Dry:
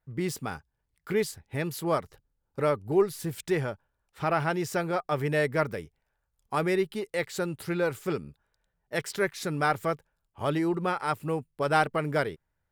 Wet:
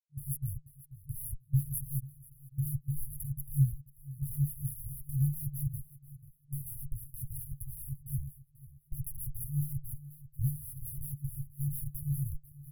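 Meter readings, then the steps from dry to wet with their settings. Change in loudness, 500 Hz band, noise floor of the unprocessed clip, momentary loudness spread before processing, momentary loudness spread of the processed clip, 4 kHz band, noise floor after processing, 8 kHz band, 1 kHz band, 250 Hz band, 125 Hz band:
−7.0 dB, below −40 dB, −80 dBFS, 9 LU, 16 LU, below −40 dB, −64 dBFS, −2.0 dB, below −40 dB, can't be measured, +2.5 dB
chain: hold until the input has moved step −32 dBFS
asymmetric clip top −24 dBFS
on a send: repeating echo 489 ms, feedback 21%, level −16 dB
on the sum: brick-wall band-stop 150–10,000 Hz
rotating-speaker cabinet horn 5.5 Hz
comb filter 6.9 ms, depth 42%
level +8 dB

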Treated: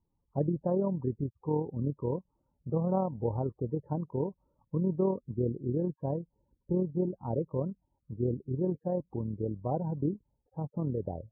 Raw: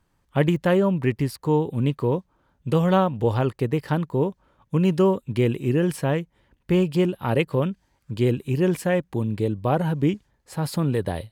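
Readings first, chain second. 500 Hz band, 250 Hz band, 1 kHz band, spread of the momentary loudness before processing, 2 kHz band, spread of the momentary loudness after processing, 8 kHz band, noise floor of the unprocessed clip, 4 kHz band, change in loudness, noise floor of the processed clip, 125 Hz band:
−9.5 dB, −9.5 dB, −11.5 dB, 8 LU, below −35 dB, 8 LU, below −35 dB, −69 dBFS, below −40 dB, −10.0 dB, −80 dBFS, −9.5 dB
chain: amplitude modulation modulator 39 Hz, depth 30%
spectral peaks only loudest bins 32
Butterworth low-pass 980 Hz 36 dB per octave
level −7.5 dB

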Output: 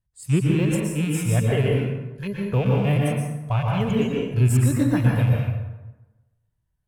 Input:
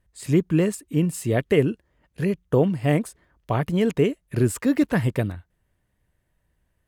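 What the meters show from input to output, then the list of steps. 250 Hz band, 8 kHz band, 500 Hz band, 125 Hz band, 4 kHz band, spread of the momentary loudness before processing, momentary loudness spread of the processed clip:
−0.5 dB, +2.5 dB, −3.0 dB, +5.5 dB, +2.5 dB, 7 LU, 9 LU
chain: loose part that buzzes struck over −23 dBFS, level −19 dBFS
hum removal 50.9 Hz, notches 2
noise reduction from a noise print of the clip's start 12 dB
octave-band graphic EQ 125/250/500/2,000 Hz +8/−7/−6/−7 dB
dense smooth reverb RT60 1.1 s, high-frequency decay 0.6×, pre-delay 105 ms, DRR −2 dB

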